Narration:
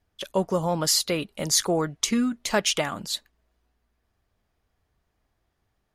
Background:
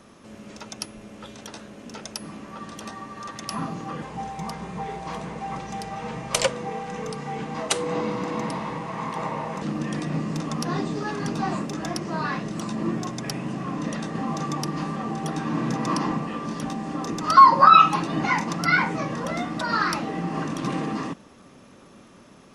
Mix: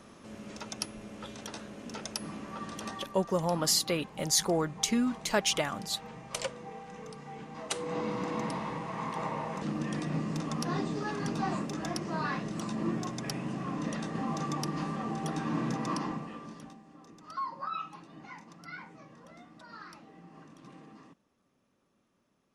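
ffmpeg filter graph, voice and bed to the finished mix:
-filter_complex "[0:a]adelay=2800,volume=0.596[s0];[1:a]volume=1.78,afade=t=out:st=2.91:d=0.27:silence=0.298538,afade=t=in:st=7.55:d=0.66:silence=0.421697,afade=t=out:st=15.54:d=1.29:silence=0.112202[s1];[s0][s1]amix=inputs=2:normalize=0"

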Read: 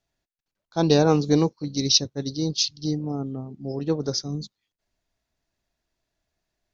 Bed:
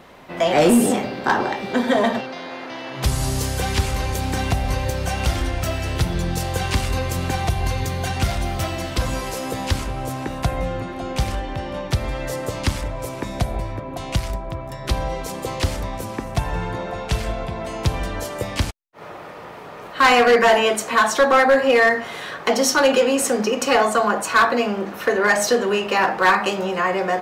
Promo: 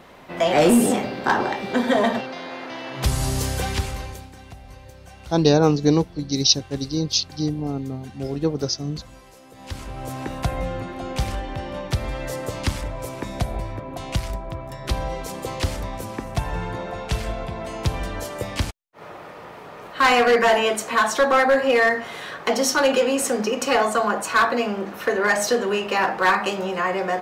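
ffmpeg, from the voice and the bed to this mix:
-filter_complex "[0:a]adelay=4550,volume=1.26[s0];[1:a]volume=7.08,afade=t=out:st=3.52:d=0.78:silence=0.105925,afade=t=in:st=9.54:d=0.7:silence=0.125893[s1];[s0][s1]amix=inputs=2:normalize=0"

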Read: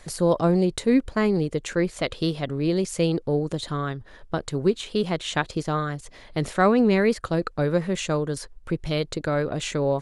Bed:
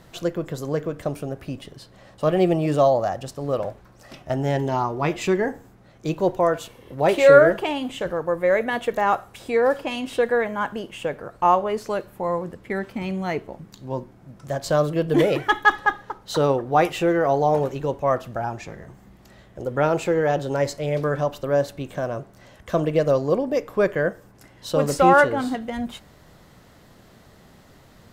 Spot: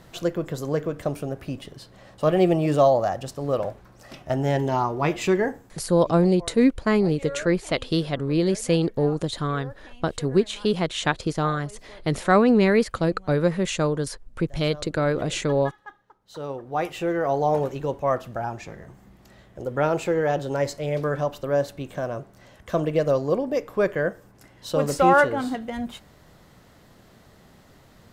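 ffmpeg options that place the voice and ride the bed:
-filter_complex "[0:a]adelay=5700,volume=1.19[s0];[1:a]volume=10.6,afade=t=out:st=5.42:d=0.55:silence=0.0749894,afade=t=in:st=16.19:d=1.33:silence=0.0944061[s1];[s0][s1]amix=inputs=2:normalize=0"

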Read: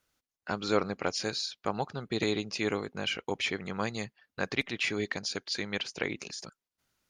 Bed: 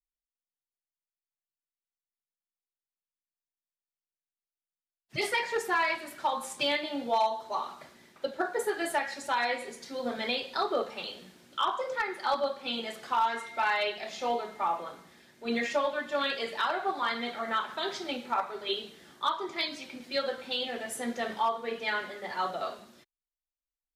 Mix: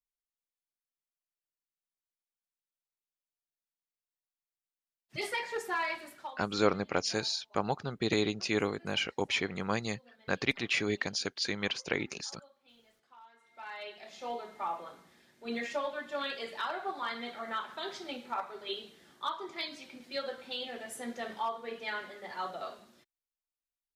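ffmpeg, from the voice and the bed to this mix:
-filter_complex "[0:a]adelay=5900,volume=1.06[s0];[1:a]volume=7.5,afade=t=out:st=6.04:d=0.37:silence=0.0668344,afade=t=in:st=13.39:d=1.21:silence=0.0707946[s1];[s0][s1]amix=inputs=2:normalize=0"

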